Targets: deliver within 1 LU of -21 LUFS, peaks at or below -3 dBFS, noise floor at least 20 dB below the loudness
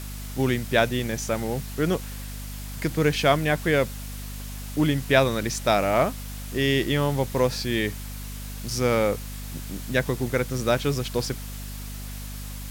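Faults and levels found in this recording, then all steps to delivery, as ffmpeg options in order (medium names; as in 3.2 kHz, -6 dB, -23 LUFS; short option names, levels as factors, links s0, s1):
hum 50 Hz; highest harmonic 250 Hz; hum level -33 dBFS; noise floor -35 dBFS; noise floor target -45 dBFS; loudness -24.5 LUFS; peak level -5.0 dBFS; loudness target -21.0 LUFS
-> -af "bandreject=f=50:t=h:w=4,bandreject=f=100:t=h:w=4,bandreject=f=150:t=h:w=4,bandreject=f=200:t=h:w=4,bandreject=f=250:t=h:w=4"
-af "afftdn=nr=10:nf=-35"
-af "volume=1.5,alimiter=limit=0.708:level=0:latency=1"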